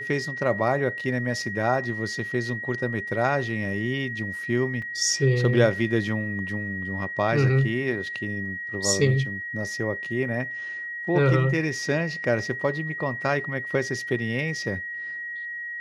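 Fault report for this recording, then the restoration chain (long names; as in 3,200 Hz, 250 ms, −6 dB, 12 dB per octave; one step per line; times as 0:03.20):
whistle 1,900 Hz −31 dBFS
0:04.82: drop-out 3.6 ms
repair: notch filter 1,900 Hz, Q 30
repair the gap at 0:04.82, 3.6 ms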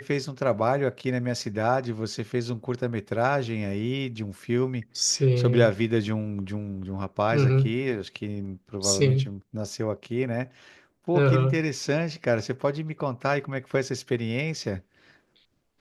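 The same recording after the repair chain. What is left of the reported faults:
none of them is left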